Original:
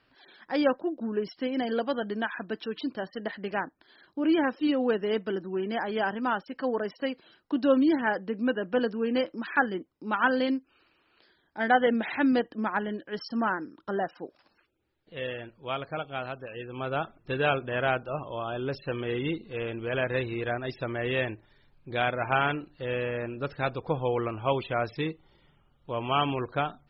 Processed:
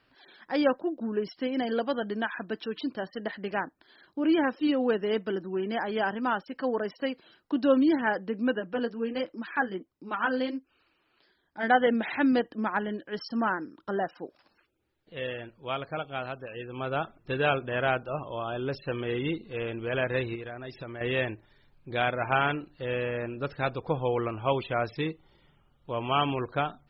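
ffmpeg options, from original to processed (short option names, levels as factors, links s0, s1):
-filter_complex "[0:a]asplit=3[s0][s1][s2];[s0]afade=t=out:st=8.59:d=0.02[s3];[s1]flanger=delay=0.1:depth=8.5:regen=-25:speed=1.3:shape=triangular,afade=t=in:st=8.59:d=0.02,afade=t=out:st=11.62:d=0.02[s4];[s2]afade=t=in:st=11.62:d=0.02[s5];[s3][s4][s5]amix=inputs=3:normalize=0,asettb=1/sr,asplit=3[s6][s7][s8];[s6]atrim=end=20.354[s9];[s7]atrim=start=20.35:end=21.01,asetpts=PTS-STARTPTS,afade=t=in:d=0.004:c=qsin,afade=t=out:st=0.656:d=0.004:c=qsin,acompressor=threshold=0.0158:ratio=5:attack=3.2:release=140:knee=1:detection=peak[s10];[s8]atrim=start=21.006[s11];[s9][s10]acrossfade=d=0.004:c1=hsin:c2=qsin[s12];[s12][s11]acrossfade=d=0.004:c1=qsin:c2=hsin"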